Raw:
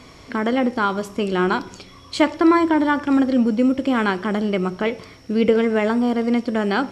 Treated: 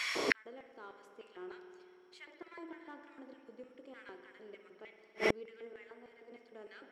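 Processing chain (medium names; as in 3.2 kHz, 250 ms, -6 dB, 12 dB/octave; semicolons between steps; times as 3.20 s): in parallel at -4.5 dB: saturation -20.5 dBFS, distortion -9 dB; 5.73–6.32 s: on the sum: rippled Chebyshev high-pass 240 Hz, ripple 3 dB; LFO high-pass square 3.3 Hz 400–1900 Hz; spring tank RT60 2.7 s, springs 55 ms, chirp 60 ms, DRR 6 dB; inverted gate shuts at -19 dBFS, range -40 dB; trim +4.5 dB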